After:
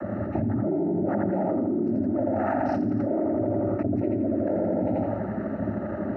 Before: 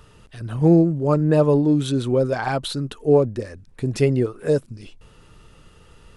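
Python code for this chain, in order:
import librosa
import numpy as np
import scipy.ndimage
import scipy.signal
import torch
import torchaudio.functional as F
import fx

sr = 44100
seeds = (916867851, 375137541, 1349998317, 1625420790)

p1 = fx.wiener(x, sr, points=25)
p2 = scipy.signal.sosfilt(scipy.signal.butter(2, 1200.0, 'lowpass', fs=sr, output='sos'), p1)
p3 = fx.comb_fb(p2, sr, f0_hz=200.0, decay_s=1.6, harmonics='all', damping=0.0, mix_pct=50)
p4 = fx.noise_vocoder(p3, sr, seeds[0], bands=12)
p5 = fx.fixed_phaser(p4, sr, hz=690.0, stages=8)
p6 = p5 + fx.echo_feedback(p5, sr, ms=84, feedback_pct=40, wet_db=-3.0, dry=0)
p7 = fx.env_flatten(p6, sr, amount_pct=100)
y = p7 * librosa.db_to_amplitude(-5.0)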